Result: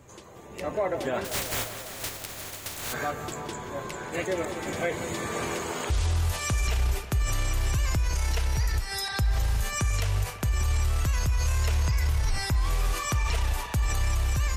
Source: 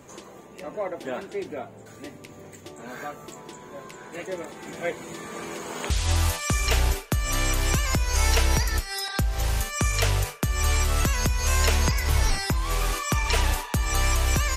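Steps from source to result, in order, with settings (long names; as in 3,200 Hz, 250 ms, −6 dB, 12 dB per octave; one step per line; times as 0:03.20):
0:01.24–0:02.92: compressing power law on the bin magnitudes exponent 0.15
low shelf with overshoot 140 Hz +7 dB, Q 1.5
automatic gain control gain up to 11 dB
brickwall limiter −13 dBFS, peak gain reduction 11.5 dB
tape delay 180 ms, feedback 83%, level −11 dB, low-pass 4,100 Hz
level −5.5 dB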